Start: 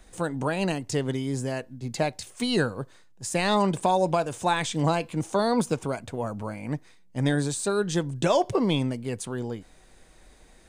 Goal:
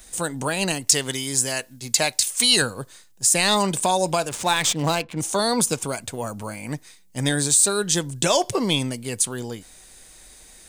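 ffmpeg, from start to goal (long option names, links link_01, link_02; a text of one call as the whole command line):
ffmpeg -i in.wav -filter_complex "[0:a]asettb=1/sr,asplit=3[link_01][link_02][link_03];[link_01]atrim=end=0.874[link_04];[link_02]atrim=start=0.87:end=2.62,asetpts=PTS-STARTPTS,afade=type=in:duration=0.004:curve=qsin,afade=type=out:start_time=1.746:duration=0.004:curve=qsin,tiltshelf=frequency=650:gain=-4.5[link_05];[link_03]atrim=start=2.616[link_06];[link_04][link_05]acrossfade=duration=0.004:curve1=hsin:curve2=qsin[link_07];[link_07][link_06]acrossfade=duration=0.004:curve1=qsin:curve2=hsin,crystalizer=i=5.5:c=0,asettb=1/sr,asplit=3[link_08][link_09][link_10];[link_08]atrim=end=4.294[link_11];[link_09]atrim=start=4.29:end=5.19,asetpts=PTS-STARTPTS,afade=type=in:duration=0.004:curve=qsin,afade=type=out:start_time=0.896:duration=0.004:curve=qsin,adynamicsmooth=sensitivity=6.5:basefreq=1000[link_12];[link_10]atrim=start=5.186[link_13];[link_11][link_12]acrossfade=duration=0.004:curve1=hsin:curve2=qsin[link_14];[link_14][link_13]acrossfade=duration=0.004:curve1=qsin:curve2=hsin" out.wav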